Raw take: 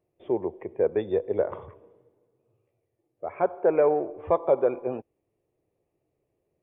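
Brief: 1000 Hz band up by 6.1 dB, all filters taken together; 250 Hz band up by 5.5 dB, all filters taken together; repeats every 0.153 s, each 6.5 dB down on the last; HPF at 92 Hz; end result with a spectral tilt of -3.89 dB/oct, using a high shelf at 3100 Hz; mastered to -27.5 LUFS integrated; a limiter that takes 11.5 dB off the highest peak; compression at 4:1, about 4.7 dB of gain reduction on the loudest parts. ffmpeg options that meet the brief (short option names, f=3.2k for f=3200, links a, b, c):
-af "highpass=92,equalizer=f=250:t=o:g=8,equalizer=f=1k:t=o:g=7.5,highshelf=f=3.1k:g=4.5,acompressor=threshold=-18dB:ratio=4,alimiter=limit=-21dB:level=0:latency=1,aecho=1:1:153|306|459|612|765|918:0.473|0.222|0.105|0.0491|0.0231|0.0109,volume=4dB"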